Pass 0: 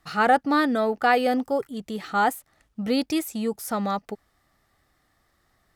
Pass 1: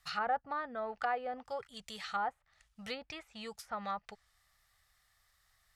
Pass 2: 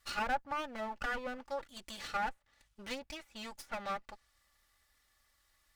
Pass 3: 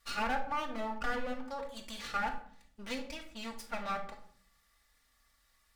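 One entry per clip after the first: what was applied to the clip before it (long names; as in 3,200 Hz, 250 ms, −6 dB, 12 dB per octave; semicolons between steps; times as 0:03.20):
guitar amp tone stack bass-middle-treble 10-0-10; treble cut that deepens with the level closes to 860 Hz, closed at −31 dBFS; level +1 dB
lower of the sound and its delayed copy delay 3.5 ms; level +1 dB
rectangular room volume 870 cubic metres, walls furnished, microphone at 1.7 metres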